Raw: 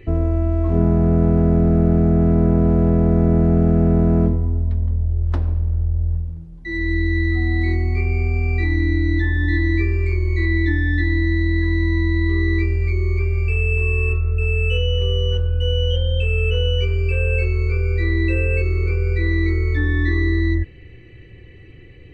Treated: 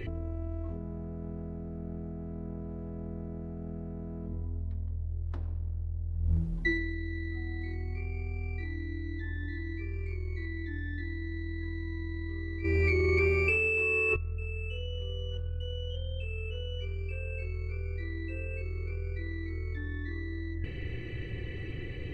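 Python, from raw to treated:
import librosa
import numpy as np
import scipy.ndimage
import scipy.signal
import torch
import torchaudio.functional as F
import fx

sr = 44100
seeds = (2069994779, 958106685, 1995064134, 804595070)

y = fx.highpass(x, sr, hz=fx.line((12.63, 130.0), (14.15, 330.0)), slope=12, at=(12.63, 14.15), fade=0.02)
y = fx.over_compress(y, sr, threshold_db=-29.0, ratio=-1.0)
y = F.gain(torch.from_numpy(y), -5.5).numpy()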